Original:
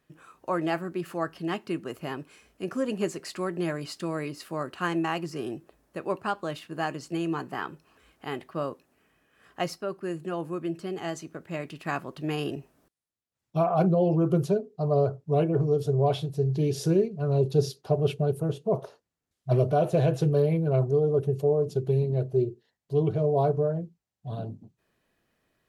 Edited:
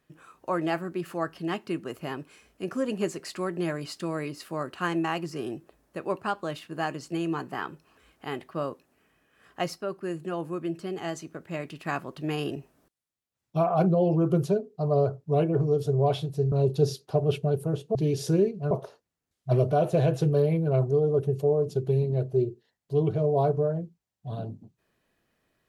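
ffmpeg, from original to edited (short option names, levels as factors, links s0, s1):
-filter_complex "[0:a]asplit=4[s0][s1][s2][s3];[s0]atrim=end=16.522[s4];[s1]atrim=start=17.278:end=18.712[s5];[s2]atrim=start=16.518:end=17.282[s6];[s3]atrim=start=18.708[s7];[s4][s5]acrossfade=d=0.004:c1=hsin:c2=hsin[s8];[s8][s6]acrossfade=d=0.004:c1=hsin:c2=hsin[s9];[s9][s7]acrossfade=d=0.004:c1=hsin:c2=hsin"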